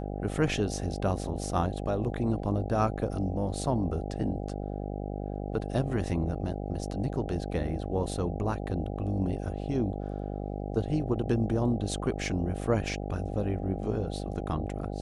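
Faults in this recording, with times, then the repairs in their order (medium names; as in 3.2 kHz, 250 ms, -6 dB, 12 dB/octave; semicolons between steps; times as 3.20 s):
buzz 50 Hz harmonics 16 -35 dBFS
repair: de-hum 50 Hz, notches 16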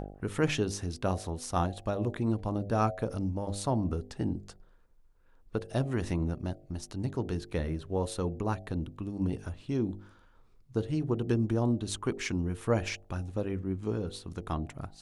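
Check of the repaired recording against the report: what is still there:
nothing left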